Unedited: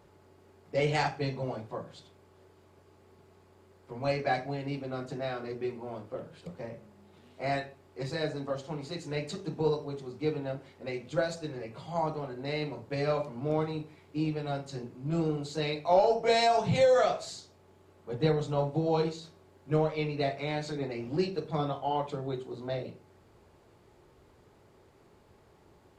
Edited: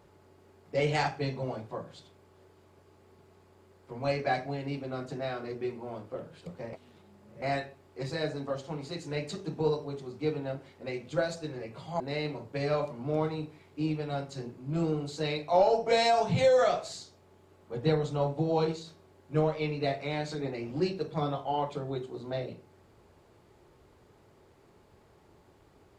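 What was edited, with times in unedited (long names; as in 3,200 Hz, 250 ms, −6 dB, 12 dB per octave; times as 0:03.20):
0:06.73–0:07.42: reverse
0:12.00–0:12.37: remove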